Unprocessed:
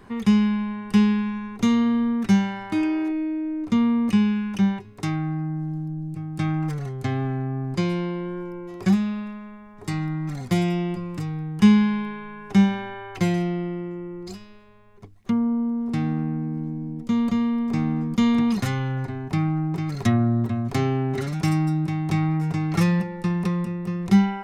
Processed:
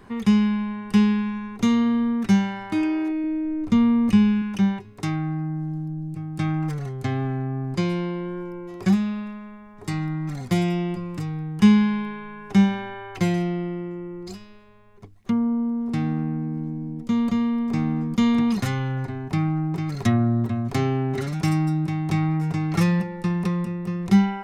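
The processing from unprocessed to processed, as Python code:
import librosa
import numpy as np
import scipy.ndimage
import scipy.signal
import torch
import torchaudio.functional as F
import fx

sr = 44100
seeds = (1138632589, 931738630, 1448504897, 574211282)

y = fx.low_shelf(x, sr, hz=110.0, db=11.0, at=(3.24, 4.42))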